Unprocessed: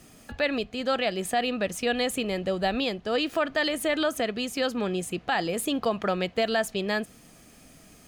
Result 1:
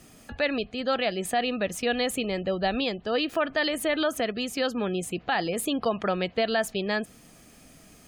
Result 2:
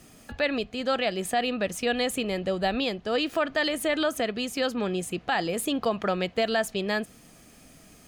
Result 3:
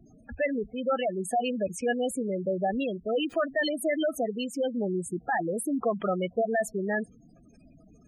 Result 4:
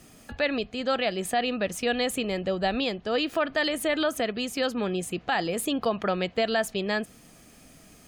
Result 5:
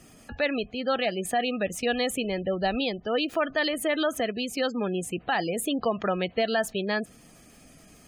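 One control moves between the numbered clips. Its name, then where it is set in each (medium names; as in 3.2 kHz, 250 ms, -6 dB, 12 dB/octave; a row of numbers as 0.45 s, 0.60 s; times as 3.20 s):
spectral gate, under each frame's peak: -35 dB, -60 dB, -10 dB, -45 dB, -25 dB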